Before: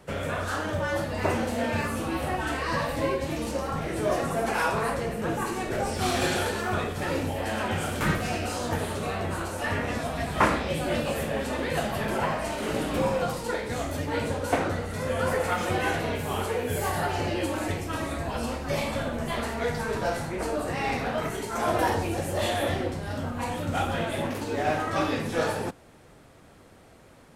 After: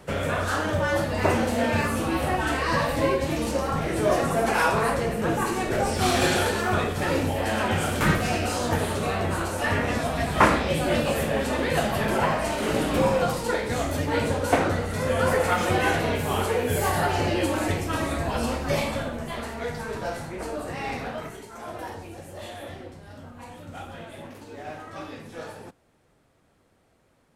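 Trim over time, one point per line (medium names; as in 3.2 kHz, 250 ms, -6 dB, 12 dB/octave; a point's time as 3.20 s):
18.70 s +4 dB
19.28 s -3 dB
21.05 s -3 dB
21.57 s -11.5 dB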